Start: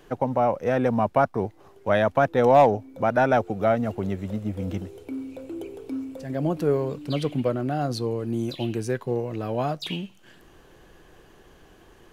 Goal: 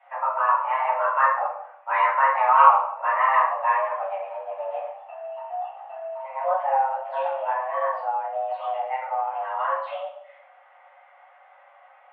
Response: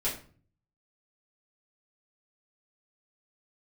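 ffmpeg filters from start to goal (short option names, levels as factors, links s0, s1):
-filter_complex "[0:a]highpass=f=160:t=q:w=0.5412,highpass=f=160:t=q:w=1.307,lowpass=f=2300:t=q:w=0.5176,lowpass=f=2300:t=q:w=0.7071,lowpass=f=2300:t=q:w=1.932,afreqshift=390[s0];[1:a]atrim=start_sample=2205,asetrate=23814,aresample=44100[s1];[s0][s1]afir=irnorm=-1:irlink=0,volume=0.335"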